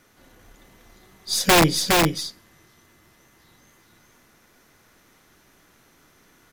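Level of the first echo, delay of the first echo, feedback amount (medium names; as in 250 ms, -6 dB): -3.0 dB, 413 ms, no regular repeats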